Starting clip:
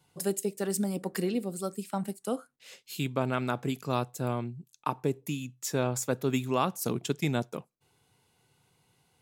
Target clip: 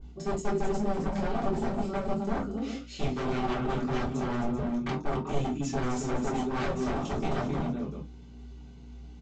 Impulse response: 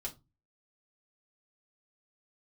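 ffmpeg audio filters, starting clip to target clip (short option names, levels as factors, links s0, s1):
-filter_complex "[0:a]highpass=f=81:w=0.5412,highpass=f=81:w=1.3066,equalizer=f=230:t=o:w=1.6:g=13,aeval=exprs='val(0)+0.00316*(sin(2*PI*60*n/s)+sin(2*PI*2*60*n/s)/2+sin(2*PI*3*60*n/s)/3+sin(2*PI*4*60*n/s)/4+sin(2*PI*5*60*n/s)/5)':c=same,areverse,acompressor=threshold=0.0398:ratio=5,areverse,flanger=delay=20:depth=2.5:speed=2,aecho=1:1:44|191|263|388:0.299|0.168|0.422|0.266,aresample=16000,aeval=exprs='0.0211*(abs(mod(val(0)/0.0211+3,4)-2)-1)':c=same,aresample=44100[s0];[1:a]atrim=start_sample=2205,atrim=end_sample=3528[s1];[s0][s1]afir=irnorm=-1:irlink=0,adynamicequalizer=threshold=0.00178:dfrequency=2200:dqfactor=0.7:tfrequency=2200:tqfactor=0.7:attack=5:release=100:ratio=0.375:range=1.5:mode=cutabove:tftype=highshelf,volume=2.82"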